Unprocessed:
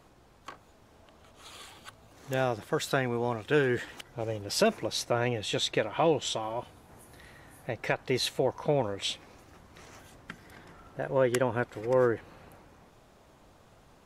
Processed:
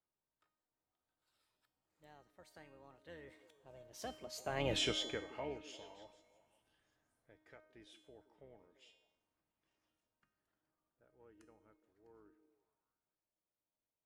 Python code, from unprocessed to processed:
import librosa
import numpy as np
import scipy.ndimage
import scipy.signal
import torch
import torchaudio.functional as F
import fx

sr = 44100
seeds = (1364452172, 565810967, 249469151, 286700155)

y = fx.octave_divider(x, sr, octaves=2, level_db=-3.0)
y = fx.doppler_pass(y, sr, speed_mps=43, closest_m=2.6, pass_at_s=4.75)
y = fx.low_shelf(y, sr, hz=76.0, db=-11.0)
y = fx.comb_fb(y, sr, f0_hz=310.0, decay_s=0.73, harmonics='all', damping=0.0, mix_pct=80)
y = fx.echo_stepped(y, sr, ms=170, hz=300.0, octaves=0.7, feedback_pct=70, wet_db=-12)
y = y * 10.0 ** (14.0 / 20.0)